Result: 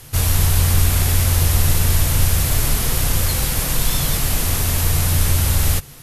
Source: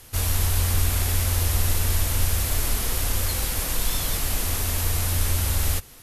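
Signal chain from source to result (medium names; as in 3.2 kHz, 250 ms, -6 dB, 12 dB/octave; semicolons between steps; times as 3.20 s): peaking EQ 140 Hz +11.5 dB 0.53 oct; trim +5.5 dB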